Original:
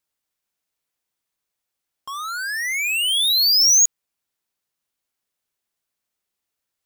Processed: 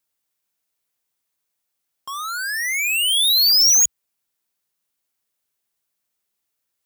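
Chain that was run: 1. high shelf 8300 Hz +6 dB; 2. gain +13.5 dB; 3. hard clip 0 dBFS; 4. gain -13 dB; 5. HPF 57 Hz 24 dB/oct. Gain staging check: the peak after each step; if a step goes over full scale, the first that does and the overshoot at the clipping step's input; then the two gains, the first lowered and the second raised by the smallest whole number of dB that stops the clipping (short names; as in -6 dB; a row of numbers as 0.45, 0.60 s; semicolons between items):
-7.0, +6.5, 0.0, -13.0, -12.5 dBFS; step 2, 6.5 dB; step 2 +6.5 dB, step 4 -6 dB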